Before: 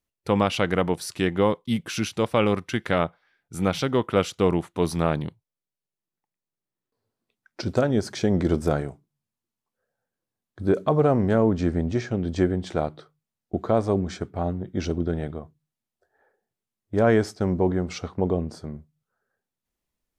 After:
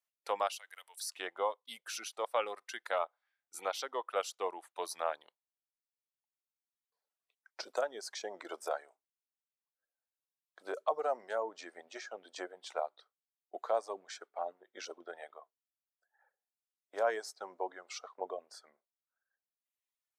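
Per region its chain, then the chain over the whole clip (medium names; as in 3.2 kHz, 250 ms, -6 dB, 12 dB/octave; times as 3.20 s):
0.52–1.00 s: pre-emphasis filter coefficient 0.97 + three bands compressed up and down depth 70%
whole clip: reverb removal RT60 1.6 s; high-pass 600 Hz 24 dB/octave; dynamic bell 2.4 kHz, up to -7 dB, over -44 dBFS, Q 0.91; trim -5 dB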